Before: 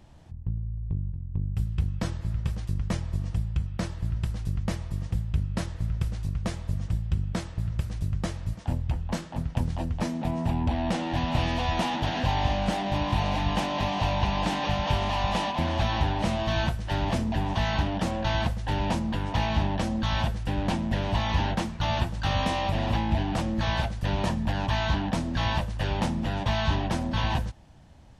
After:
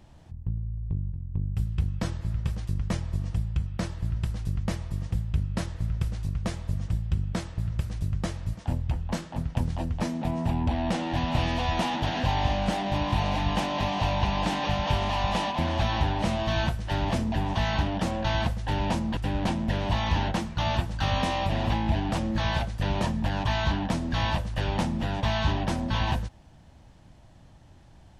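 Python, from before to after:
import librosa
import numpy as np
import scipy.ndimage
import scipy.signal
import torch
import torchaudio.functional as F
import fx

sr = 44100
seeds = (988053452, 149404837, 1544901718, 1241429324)

y = fx.edit(x, sr, fx.cut(start_s=19.17, length_s=1.23), tone=tone)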